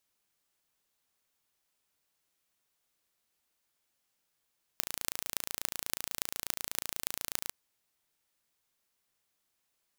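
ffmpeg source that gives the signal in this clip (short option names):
-f lavfi -i "aevalsrc='0.794*eq(mod(n,1564),0)*(0.5+0.5*eq(mod(n,12512),0))':d=2.7:s=44100"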